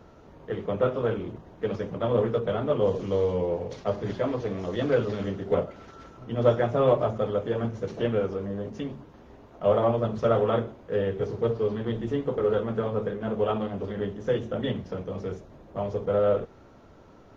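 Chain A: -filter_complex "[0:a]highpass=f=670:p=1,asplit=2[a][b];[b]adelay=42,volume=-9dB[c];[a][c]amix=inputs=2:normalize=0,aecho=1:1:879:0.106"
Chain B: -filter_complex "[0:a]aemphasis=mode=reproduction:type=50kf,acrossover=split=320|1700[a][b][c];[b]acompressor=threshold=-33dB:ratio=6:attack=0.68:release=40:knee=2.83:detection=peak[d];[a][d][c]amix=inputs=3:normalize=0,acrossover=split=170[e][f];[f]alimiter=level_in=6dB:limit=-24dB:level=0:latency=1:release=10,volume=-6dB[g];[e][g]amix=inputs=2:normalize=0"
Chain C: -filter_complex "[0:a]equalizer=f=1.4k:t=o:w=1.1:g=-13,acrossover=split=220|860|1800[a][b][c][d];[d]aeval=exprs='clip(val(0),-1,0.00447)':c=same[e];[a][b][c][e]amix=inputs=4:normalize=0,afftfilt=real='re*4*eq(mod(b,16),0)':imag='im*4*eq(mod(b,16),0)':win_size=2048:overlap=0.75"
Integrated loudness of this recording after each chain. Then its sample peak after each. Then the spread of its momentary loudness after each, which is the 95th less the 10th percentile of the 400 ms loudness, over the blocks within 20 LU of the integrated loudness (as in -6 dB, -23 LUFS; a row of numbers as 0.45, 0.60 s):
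-32.0, -35.0, -35.5 LUFS; -13.0, -21.5, -16.0 dBFS; 14, 9, 16 LU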